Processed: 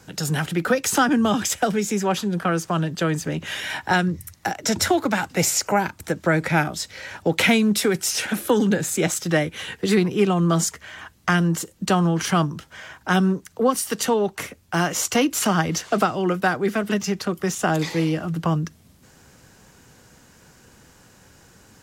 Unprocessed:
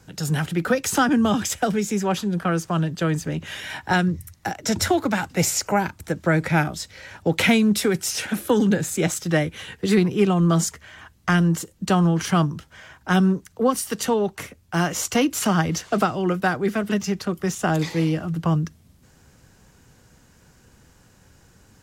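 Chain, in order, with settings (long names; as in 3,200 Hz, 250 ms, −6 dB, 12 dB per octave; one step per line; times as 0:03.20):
low-shelf EQ 130 Hz −9 dB
in parallel at −2 dB: downward compressor, threshold −31 dBFS, peak gain reduction 15.5 dB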